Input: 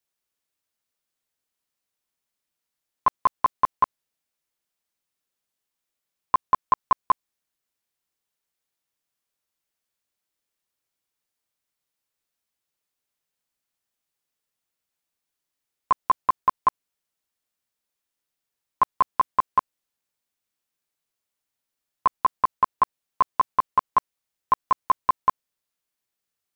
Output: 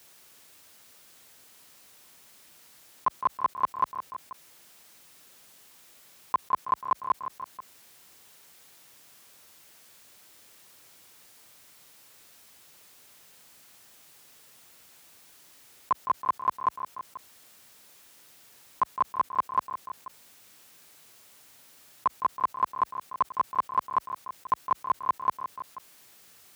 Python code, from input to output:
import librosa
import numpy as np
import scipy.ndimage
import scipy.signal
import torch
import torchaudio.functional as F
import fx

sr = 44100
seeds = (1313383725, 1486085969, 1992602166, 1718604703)

p1 = scipy.signal.sosfilt(scipy.signal.butter(2, 70.0, 'highpass', fs=sr, output='sos'), x)
p2 = p1 + fx.echo_feedback(p1, sr, ms=162, feedback_pct=47, wet_db=-21, dry=0)
p3 = fx.env_flatten(p2, sr, amount_pct=50)
y = p3 * librosa.db_to_amplitude(-5.5)